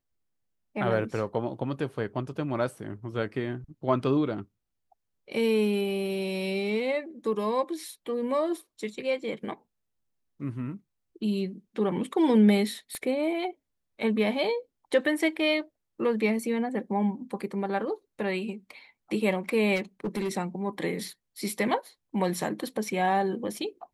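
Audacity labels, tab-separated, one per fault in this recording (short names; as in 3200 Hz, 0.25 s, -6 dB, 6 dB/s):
12.950000	12.950000	pop -23 dBFS
19.750000	20.320000	clipped -25.5 dBFS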